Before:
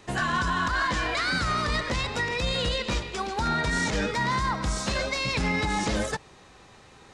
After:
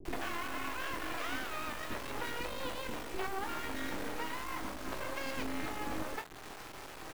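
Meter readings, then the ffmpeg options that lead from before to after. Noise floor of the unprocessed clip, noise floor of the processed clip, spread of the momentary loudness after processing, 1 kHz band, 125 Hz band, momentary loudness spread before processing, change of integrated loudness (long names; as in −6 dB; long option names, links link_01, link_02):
−52 dBFS, −48 dBFS, 5 LU, −11.5 dB, −19.5 dB, 4 LU, −13.0 dB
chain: -filter_complex "[0:a]lowpass=1700,bandreject=frequency=60:width_type=h:width=6,bandreject=frequency=120:width_type=h:width=6,bandreject=frequency=180:width_type=h:width=6,bandreject=frequency=240:width_type=h:width=6,bandreject=frequency=300:width_type=h:width=6,bandreject=frequency=360:width_type=h:width=6,bandreject=frequency=420:width_type=h:width=6,bandreject=frequency=480:width_type=h:width=6,acompressor=threshold=-40dB:ratio=16,aresample=16000,aeval=exprs='max(val(0),0)':channel_layout=same,aresample=44100,flanger=delay=7.8:depth=6.6:regen=88:speed=0.36:shape=sinusoidal,highpass=frequency=290:width_type=q:width=3.4,acrusher=bits=7:dc=4:mix=0:aa=0.000001,asplit=2[link_01][link_02];[link_02]adelay=26,volume=-9.5dB[link_03];[link_01][link_03]amix=inputs=2:normalize=0,acrossover=split=380[link_04][link_05];[link_05]adelay=50[link_06];[link_04][link_06]amix=inputs=2:normalize=0,volume=15.5dB"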